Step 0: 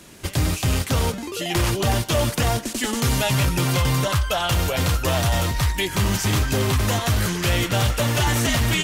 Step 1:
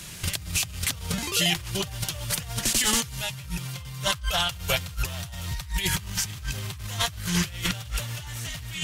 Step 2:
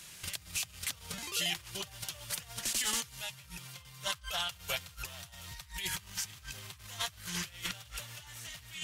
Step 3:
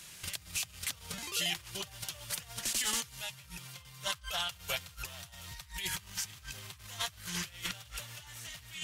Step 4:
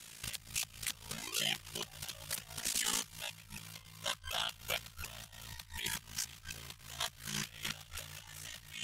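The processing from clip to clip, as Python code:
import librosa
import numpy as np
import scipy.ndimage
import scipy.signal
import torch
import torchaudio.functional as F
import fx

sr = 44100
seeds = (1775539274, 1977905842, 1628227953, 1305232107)

y1 = fx.curve_eq(x, sr, hz=(170.0, 250.0, 3100.0), db=(0, -15, 1))
y1 = fx.over_compress(y1, sr, threshold_db=-28.0, ratio=-0.5)
y2 = fx.low_shelf(y1, sr, hz=400.0, db=-10.0)
y2 = y2 * librosa.db_to_amplitude(-9.0)
y3 = y2
y4 = y3 * np.sin(2.0 * np.pi * 28.0 * np.arange(len(y3)) / sr)
y4 = y4 * librosa.db_to_amplitude(1.0)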